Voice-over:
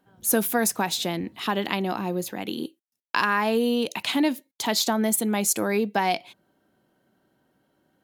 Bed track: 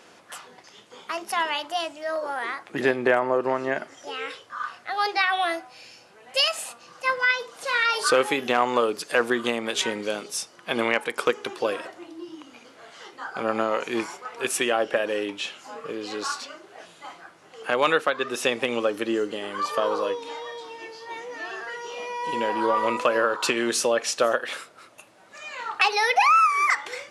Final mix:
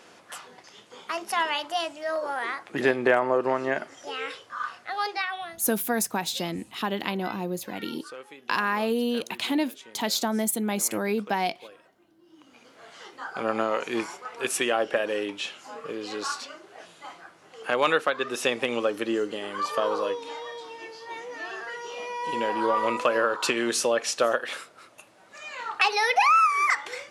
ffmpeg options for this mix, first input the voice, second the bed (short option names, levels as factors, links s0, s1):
-filter_complex "[0:a]adelay=5350,volume=0.708[s0];[1:a]volume=10,afade=t=out:st=4.69:d=0.92:silence=0.0841395,afade=t=in:st=12.23:d=0.65:silence=0.0944061[s1];[s0][s1]amix=inputs=2:normalize=0"